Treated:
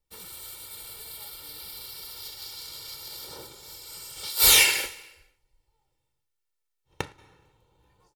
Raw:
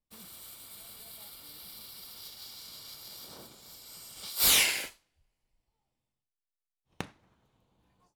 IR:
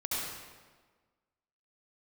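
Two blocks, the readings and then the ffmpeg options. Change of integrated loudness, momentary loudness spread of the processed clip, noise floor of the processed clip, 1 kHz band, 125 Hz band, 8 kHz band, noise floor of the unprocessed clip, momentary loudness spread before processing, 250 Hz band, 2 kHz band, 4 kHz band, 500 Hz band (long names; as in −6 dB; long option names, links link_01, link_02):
+5.5 dB, 23 LU, −80 dBFS, +6.5 dB, +5.5 dB, +6.5 dB, below −85 dBFS, 23 LU, +1.5 dB, +7.0 dB, +6.0 dB, +7.5 dB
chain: -filter_complex "[0:a]aecho=1:1:2.2:0.72,asplit=2[link_01][link_02];[1:a]atrim=start_sample=2205,afade=type=out:start_time=0.45:duration=0.01,atrim=end_sample=20286,adelay=112[link_03];[link_02][link_03]afir=irnorm=-1:irlink=0,volume=-26.5dB[link_04];[link_01][link_04]amix=inputs=2:normalize=0,volume=4.5dB"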